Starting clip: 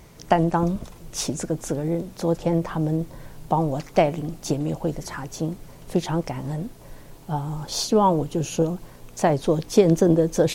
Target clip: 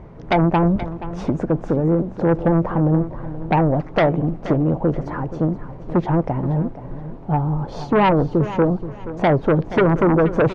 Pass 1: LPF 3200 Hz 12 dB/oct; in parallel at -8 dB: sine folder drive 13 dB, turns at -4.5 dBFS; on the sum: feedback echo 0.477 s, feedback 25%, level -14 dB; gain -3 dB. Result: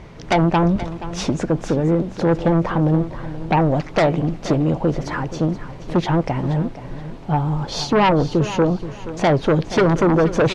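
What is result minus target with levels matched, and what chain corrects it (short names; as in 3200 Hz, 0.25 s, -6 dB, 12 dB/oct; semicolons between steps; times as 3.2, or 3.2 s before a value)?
4000 Hz band +8.0 dB
LPF 1100 Hz 12 dB/oct; in parallel at -8 dB: sine folder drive 13 dB, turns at -4.5 dBFS; on the sum: feedback echo 0.477 s, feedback 25%, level -14 dB; gain -3 dB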